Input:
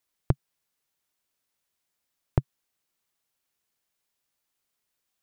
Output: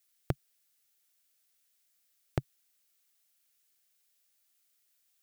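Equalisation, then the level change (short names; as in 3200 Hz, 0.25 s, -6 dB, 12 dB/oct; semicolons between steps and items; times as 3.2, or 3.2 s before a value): tilt +2.5 dB/oct; bell 1000 Hz -11 dB 0.3 oct; -1.0 dB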